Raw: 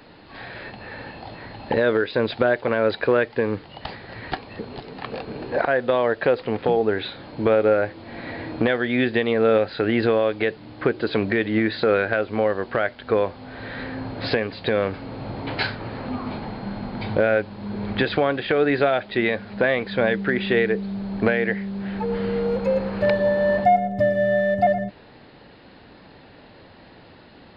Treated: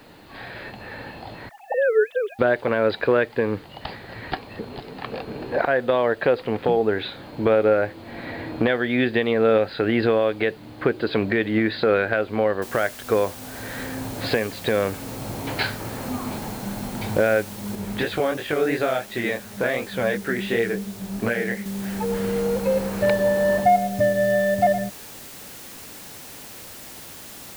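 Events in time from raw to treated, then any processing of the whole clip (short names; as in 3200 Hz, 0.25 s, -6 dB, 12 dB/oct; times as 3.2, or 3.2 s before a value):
1.49–2.39 sine-wave speech
12.62 noise floor step -63 dB -41 dB
17.75–21.66 chorus 2.8 Hz, delay 17.5 ms, depth 7.8 ms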